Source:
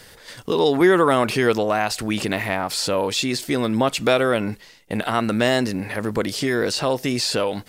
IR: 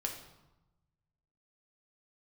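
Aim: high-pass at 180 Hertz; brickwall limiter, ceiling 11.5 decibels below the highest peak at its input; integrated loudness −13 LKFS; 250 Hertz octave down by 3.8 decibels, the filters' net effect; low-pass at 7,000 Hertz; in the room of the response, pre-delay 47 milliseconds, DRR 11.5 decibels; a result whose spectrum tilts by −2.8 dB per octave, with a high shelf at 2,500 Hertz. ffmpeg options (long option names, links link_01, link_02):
-filter_complex "[0:a]highpass=180,lowpass=7000,equalizer=frequency=250:width_type=o:gain=-4,highshelf=frequency=2500:gain=5.5,alimiter=limit=-13.5dB:level=0:latency=1,asplit=2[link_01][link_02];[1:a]atrim=start_sample=2205,adelay=47[link_03];[link_02][link_03]afir=irnorm=-1:irlink=0,volume=-13dB[link_04];[link_01][link_04]amix=inputs=2:normalize=0,volume=11.5dB"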